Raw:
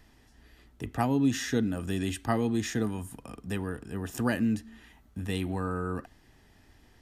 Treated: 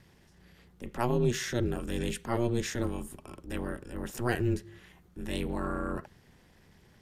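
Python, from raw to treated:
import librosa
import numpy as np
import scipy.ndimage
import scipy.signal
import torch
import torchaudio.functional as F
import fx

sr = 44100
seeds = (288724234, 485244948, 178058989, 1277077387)

y = x * np.sin(2.0 * np.pi * 120.0 * np.arange(len(x)) / sr)
y = fx.transient(y, sr, attack_db=-6, sustain_db=0)
y = y * 10.0 ** (2.5 / 20.0)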